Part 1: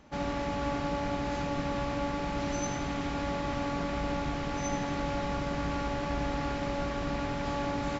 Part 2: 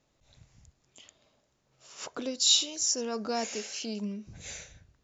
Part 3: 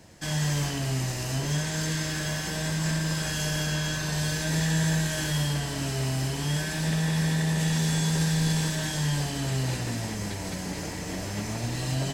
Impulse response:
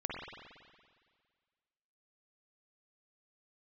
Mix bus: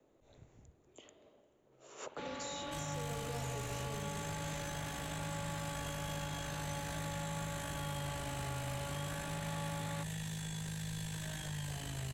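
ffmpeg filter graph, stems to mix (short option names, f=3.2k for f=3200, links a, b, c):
-filter_complex "[0:a]highpass=160,equalizer=f=3.9k:t=o:w=0.77:g=6,adelay=2050,volume=-6.5dB[a];[1:a]equalizer=f=380:t=o:w=1.8:g=14.5,volume=-5dB,asplit=2[b][c];[c]volume=-14dB[d];[2:a]tremolo=f=52:d=0.667,adelay=2500,volume=-2.5dB[e];[b][e]amix=inputs=2:normalize=0,acrossover=split=190|3000[f][g][h];[g]acompressor=threshold=-43dB:ratio=6[i];[f][i][h]amix=inputs=3:normalize=0,alimiter=level_in=2.5dB:limit=-24dB:level=0:latency=1,volume=-2.5dB,volume=0dB[j];[3:a]atrim=start_sample=2205[k];[d][k]afir=irnorm=-1:irlink=0[l];[a][j][l]amix=inputs=3:normalize=0,equalizer=f=5.1k:w=2.8:g=-11.5,acrossover=split=150|430|960|4100[m][n][o][p][q];[m]acompressor=threshold=-40dB:ratio=4[r];[n]acompressor=threshold=-58dB:ratio=4[s];[o]acompressor=threshold=-46dB:ratio=4[t];[p]acompressor=threshold=-46dB:ratio=4[u];[q]acompressor=threshold=-49dB:ratio=4[v];[r][s][t][u][v]amix=inputs=5:normalize=0"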